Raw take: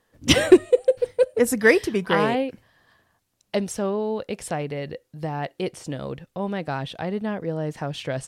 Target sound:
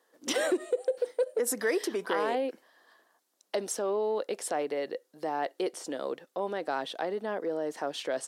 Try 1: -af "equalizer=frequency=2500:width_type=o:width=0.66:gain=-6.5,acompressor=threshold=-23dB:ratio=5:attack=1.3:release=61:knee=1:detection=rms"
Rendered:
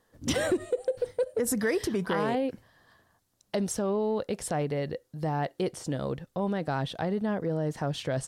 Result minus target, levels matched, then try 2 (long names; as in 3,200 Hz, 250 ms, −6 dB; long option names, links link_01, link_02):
250 Hz band +5.0 dB
-af "equalizer=frequency=2500:width_type=o:width=0.66:gain=-6.5,acompressor=threshold=-23dB:ratio=5:attack=1.3:release=61:knee=1:detection=rms,highpass=frequency=310:width=0.5412,highpass=frequency=310:width=1.3066"